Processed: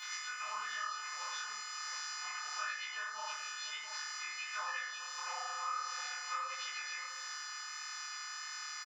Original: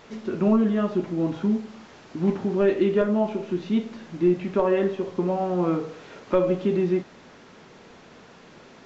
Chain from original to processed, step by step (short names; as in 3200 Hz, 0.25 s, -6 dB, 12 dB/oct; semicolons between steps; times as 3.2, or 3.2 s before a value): frequency quantiser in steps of 3 st; inverse Chebyshev high-pass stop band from 360 Hz, stop band 60 dB; compressor, threshold -42 dBFS, peak gain reduction 13 dB; doubler 36 ms -6 dB; tapped delay 58/78/457/684 ms -17.5/-9/-17.5/-11 dB; detuned doubles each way 52 cents; gain +7.5 dB